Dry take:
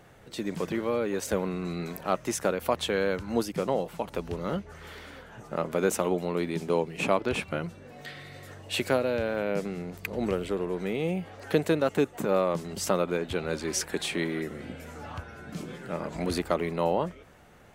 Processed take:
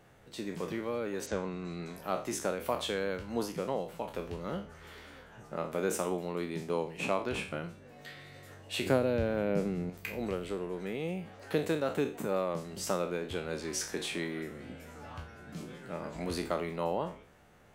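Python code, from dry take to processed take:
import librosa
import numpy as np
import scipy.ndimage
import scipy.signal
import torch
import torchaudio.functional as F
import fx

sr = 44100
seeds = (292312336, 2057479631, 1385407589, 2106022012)

y = fx.spec_trails(x, sr, decay_s=0.39)
y = fx.lowpass(y, sr, hz=fx.line((1.25, 6000.0), (2.02, 11000.0)), slope=24, at=(1.25, 2.02), fade=0.02)
y = fx.low_shelf(y, sr, hz=490.0, db=9.5, at=(8.86, 9.9))
y = y * librosa.db_to_amplitude(-7.0)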